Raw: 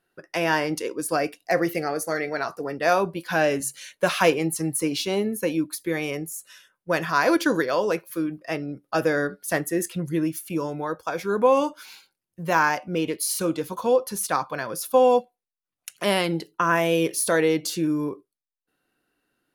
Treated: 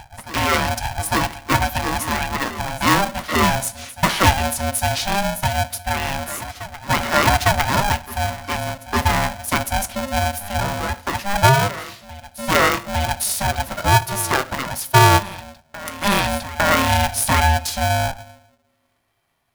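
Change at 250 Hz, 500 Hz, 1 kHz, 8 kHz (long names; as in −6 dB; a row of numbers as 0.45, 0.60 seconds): 0.0, −2.0, +8.0, +6.5 decibels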